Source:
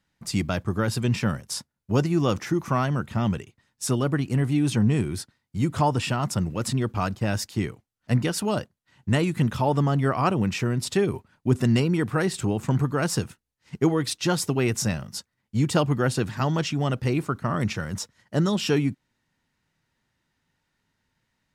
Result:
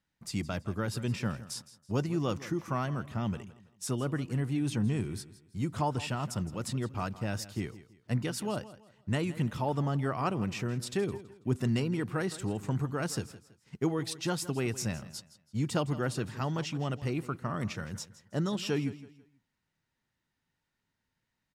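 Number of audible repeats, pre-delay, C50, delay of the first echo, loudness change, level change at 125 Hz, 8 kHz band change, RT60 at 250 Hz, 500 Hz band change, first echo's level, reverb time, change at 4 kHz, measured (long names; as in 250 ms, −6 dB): 2, no reverb audible, no reverb audible, 164 ms, −8.5 dB, −8.5 dB, −8.5 dB, no reverb audible, −8.5 dB, −16.5 dB, no reverb audible, −8.5 dB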